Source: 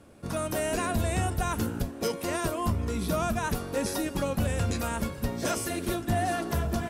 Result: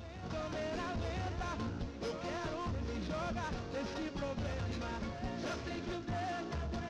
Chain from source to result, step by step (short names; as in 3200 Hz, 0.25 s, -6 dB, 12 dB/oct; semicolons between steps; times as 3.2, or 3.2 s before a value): CVSD 32 kbps; soft clip -26.5 dBFS, distortion -14 dB; reverse echo 1.01 s -9 dB; gain -7 dB